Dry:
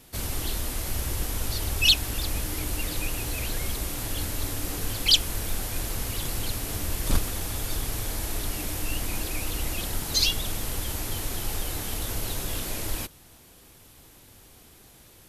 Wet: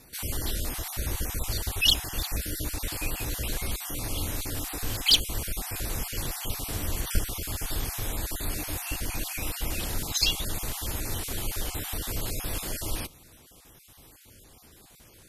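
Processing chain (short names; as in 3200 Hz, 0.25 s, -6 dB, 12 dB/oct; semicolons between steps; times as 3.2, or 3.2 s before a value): random spectral dropouts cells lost 24%; one-sided clip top -13 dBFS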